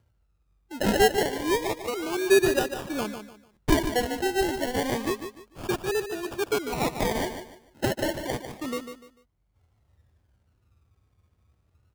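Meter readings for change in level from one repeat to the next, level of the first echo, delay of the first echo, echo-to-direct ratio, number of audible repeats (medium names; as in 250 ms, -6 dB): -11.0 dB, -9.0 dB, 148 ms, -8.5 dB, 3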